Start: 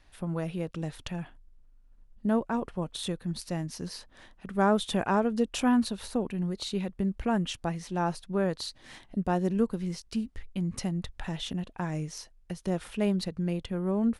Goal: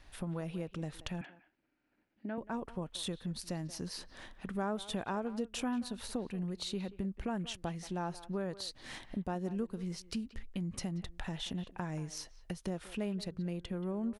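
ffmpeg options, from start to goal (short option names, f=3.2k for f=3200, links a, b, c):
-filter_complex "[0:a]acompressor=threshold=-42dB:ratio=2.5,asettb=1/sr,asplit=3[a][b][c];[a]atrim=end=1.214[d];[b]atrim=start=1.21:end=2.38,asetpts=PTS-STARTPTS,afade=t=in:d=0.004:c=qsin,afade=t=out:st=1.166:d=0.004:c=qsin,highpass=280,equalizer=f=320:t=q:w=4:g=9,equalizer=f=450:t=q:w=4:g=-5,equalizer=f=1.1k:t=q:w=4:g=-8,equalizer=f=1.6k:t=q:w=4:g=5,equalizer=f=2.3k:t=q:w=4:g=8,equalizer=f=3.5k:t=q:w=4:g=-5,lowpass=f=4.4k:w=0.5412,lowpass=f=4.4k:w=1.3066[e];[c]atrim=start=2.376[f];[d][e]acrossfade=d=0.004:c1=hsin:c2=qsin[g];[g][f]acrossfade=d=0.004:c1=qsin:c2=hsin,asplit=2[h][i];[i]adelay=180,highpass=300,lowpass=3.4k,asoftclip=type=hard:threshold=-30.5dB,volume=-15dB[j];[h][j]amix=inputs=2:normalize=0,volume=2.5dB"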